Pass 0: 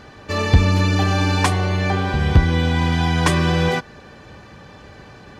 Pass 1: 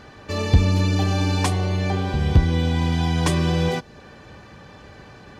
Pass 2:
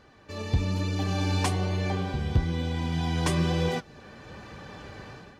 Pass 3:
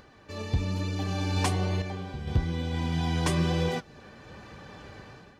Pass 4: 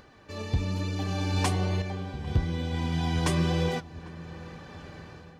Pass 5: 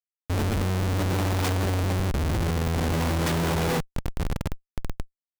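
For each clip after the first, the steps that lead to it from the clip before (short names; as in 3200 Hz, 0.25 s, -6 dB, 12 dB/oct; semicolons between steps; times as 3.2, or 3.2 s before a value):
dynamic EQ 1500 Hz, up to -7 dB, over -38 dBFS, Q 0.87; gain -2 dB
AGC gain up to 13 dB; flange 1.1 Hz, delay 1.7 ms, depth 8.4 ms, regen +71%; gain -7.5 dB
upward compressor, threshold -49 dBFS; random-step tremolo 2.2 Hz
darkening echo 0.8 s, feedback 49%, low-pass 1000 Hz, level -18 dB
Schmitt trigger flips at -34 dBFS; gain +5.5 dB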